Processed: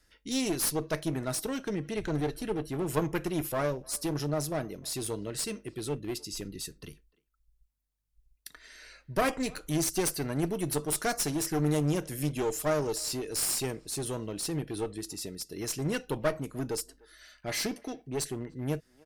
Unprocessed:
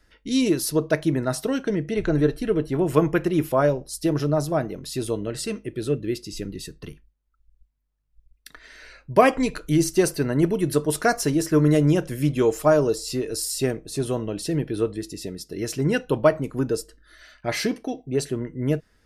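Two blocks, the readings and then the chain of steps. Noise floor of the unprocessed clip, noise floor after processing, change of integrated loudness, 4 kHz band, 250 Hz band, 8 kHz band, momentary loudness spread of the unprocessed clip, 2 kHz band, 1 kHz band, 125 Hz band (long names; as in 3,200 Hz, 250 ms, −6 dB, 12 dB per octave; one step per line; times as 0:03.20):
−64 dBFS, −72 dBFS, −8.5 dB, −3.0 dB, −10.0 dB, −1.0 dB, 11 LU, −8.0 dB, −9.0 dB, −9.0 dB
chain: high-shelf EQ 4,100 Hz +11.5 dB
asymmetric clip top −23.5 dBFS
far-end echo of a speakerphone 300 ms, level −25 dB
level −8 dB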